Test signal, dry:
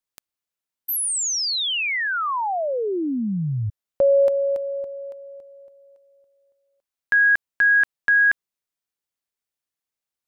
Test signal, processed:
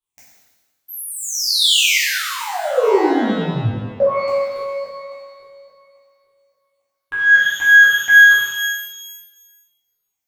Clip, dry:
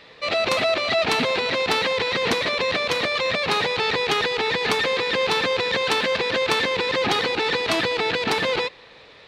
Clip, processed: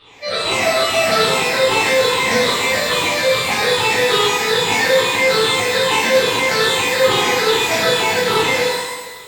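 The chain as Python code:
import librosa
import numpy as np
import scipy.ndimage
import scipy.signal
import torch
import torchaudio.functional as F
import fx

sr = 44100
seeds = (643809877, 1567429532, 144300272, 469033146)

y = fx.spec_ripple(x, sr, per_octave=0.64, drift_hz=-2.4, depth_db=15)
y = fx.rev_shimmer(y, sr, seeds[0], rt60_s=1.2, semitones=12, shimmer_db=-8, drr_db=-10.0)
y = F.gain(torch.from_numpy(y), -7.5).numpy()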